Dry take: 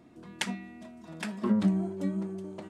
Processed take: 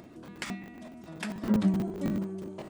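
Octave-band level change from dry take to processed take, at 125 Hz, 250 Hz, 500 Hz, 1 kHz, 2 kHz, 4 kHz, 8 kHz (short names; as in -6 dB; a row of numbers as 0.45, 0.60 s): +0.5, 0.0, 0.0, -1.0, -1.5, -4.5, -4.0 dB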